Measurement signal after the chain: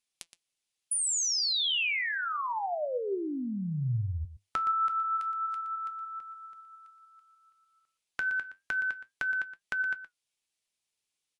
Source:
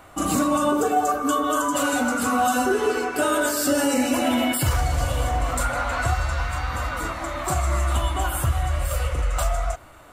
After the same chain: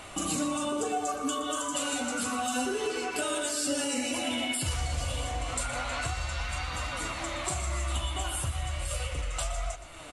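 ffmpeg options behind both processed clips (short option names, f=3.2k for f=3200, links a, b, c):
-filter_complex "[0:a]highshelf=f=2k:t=q:w=1.5:g=6.5,acompressor=threshold=-37dB:ratio=2.5,flanger=delay=4.6:depth=8.3:regen=68:speed=0.31:shape=triangular,asplit=2[a][b];[b]aecho=0:1:119:0.224[c];[a][c]amix=inputs=2:normalize=0,volume=6.5dB" -ar 24000 -c:a aac -b:a 96k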